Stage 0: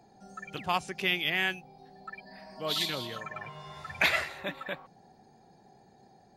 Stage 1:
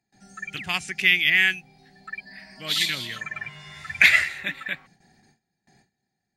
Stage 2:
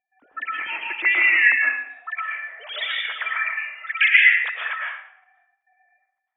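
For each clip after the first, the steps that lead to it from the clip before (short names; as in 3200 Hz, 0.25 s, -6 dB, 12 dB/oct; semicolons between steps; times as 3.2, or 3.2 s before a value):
gate with hold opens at -48 dBFS; graphic EQ 500/1000/2000/8000 Hz -10/-10/+12/+7 dB; gain +3 dB
sine-wave speech; reverb RT60 0.70 s, pre-delay 85 ms, DRR -3 dB; gain -1 dB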